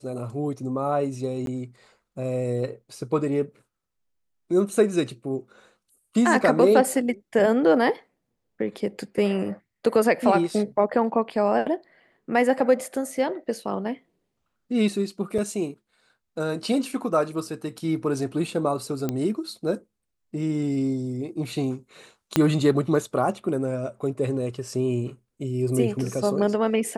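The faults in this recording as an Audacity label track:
1.460000	1.470000	dropout 12 ms
15.380000	15.380000	dropout 5 ms
19.090000	19.090000	pop -13 dBFS
22.360000	22.360000	pop -5 dBFS

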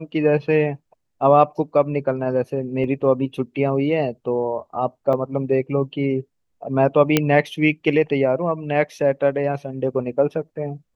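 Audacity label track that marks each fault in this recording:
2.840000	2.840000	dropout 2.2 ms
5.130000	5.130000	dropout 3.4 ms
7.170000	7.170000	pop -1 dBFS

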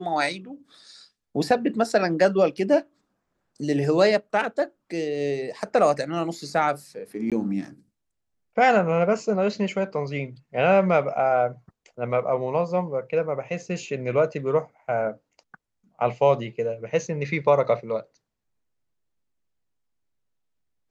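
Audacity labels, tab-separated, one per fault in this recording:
7.300000	7.320000	dropout 17 ms

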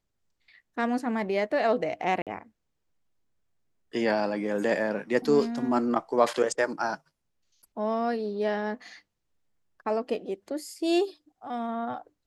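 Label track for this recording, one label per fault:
2.220000	2.270000	dropout 47 ms

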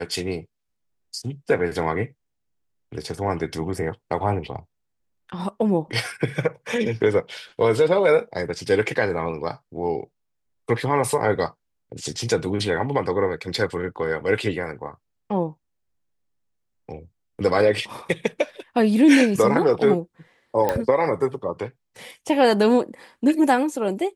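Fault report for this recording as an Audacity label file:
20.690000	20.690000	pop -9 dBFS

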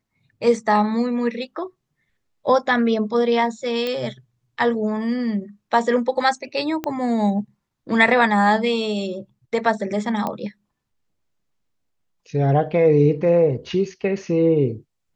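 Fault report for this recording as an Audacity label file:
3.870000	3.870000	pop -13 dBFS
6.840000	6.840000	pop -12 dBFS
10.270000	10.270000	pop -13 dBFS

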